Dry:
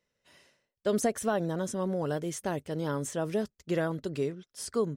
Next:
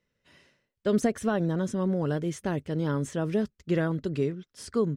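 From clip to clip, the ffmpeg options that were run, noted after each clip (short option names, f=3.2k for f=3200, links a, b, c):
-af "lowpass=f=1.9k:p=1,equalizer=f=710:t=o:w=1.7:g=-8,volume=7dB"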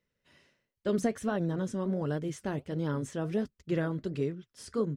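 -af "flanger=delay=0:depth=8.7:regen=-69:speed=1.4:shape=sinusoidal"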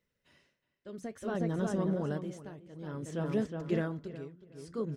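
-filter_complex "[0:a]asplit=2[a][b];[b]adelay=366,lowpass=f=2.9k:p=1,volume=-6dB,asplit=2[c][d];[d]adelay=366,lowpass=f=2.9k:p=1,volume=0.33,asplit=2[e][f];[f]adelay=366,lowpass=f=2.9k:p=1,volume=0.33,asplit=2[g][h];[h]adelay=366,lowpass=f=2.9k:p=1,volume=0.33[i];[a][c][e][g][i]amix=inputs=5:normalize=0,tremolo=f=0.57:d=0.85"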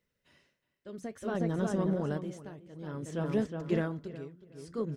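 -af "aeval=exprs='0.126*(cos(1*acos(clip(val(0)/0.126,-1,1)))-cos(1*PI/2))+0.002*(cos(7*acos(clip(val(0)/0.126,-1,1)))-cos(7*PI/2))':c=same,volume=1.5dB"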